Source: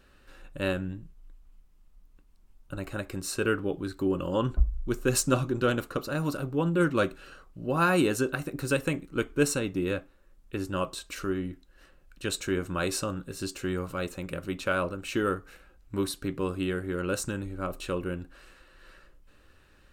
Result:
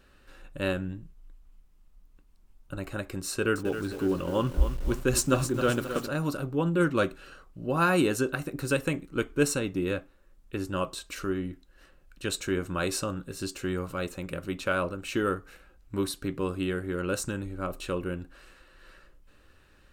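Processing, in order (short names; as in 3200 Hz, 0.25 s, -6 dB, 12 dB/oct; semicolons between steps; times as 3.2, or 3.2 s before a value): 3.29–6.08 lo-fi delay 0.265 s, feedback 55%, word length 7-bit, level -9 dB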